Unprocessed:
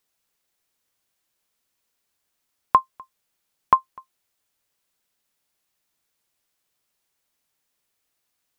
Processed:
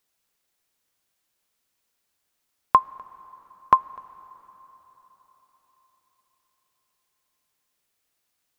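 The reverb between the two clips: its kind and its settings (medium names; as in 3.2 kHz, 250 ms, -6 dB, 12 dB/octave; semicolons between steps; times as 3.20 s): plate-style reverb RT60 4.6 s, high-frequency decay 0.8×, DRR 20 dB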